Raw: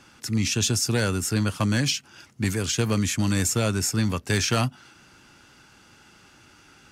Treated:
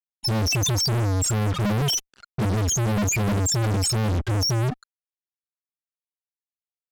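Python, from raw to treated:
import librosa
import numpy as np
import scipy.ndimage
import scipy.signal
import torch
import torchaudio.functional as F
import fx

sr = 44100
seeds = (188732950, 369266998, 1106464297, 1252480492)

y = fx.spec_topn(x, sr, count=2)
y = fx.fuzz(y, sr, gain_db=57.0, gate_db=-54.0)
y = fx.env_lowpass(y, sr, base_hz=1900.0, full_db=-17.0)
y = y * librosa.db_to_amplitude(-8.0)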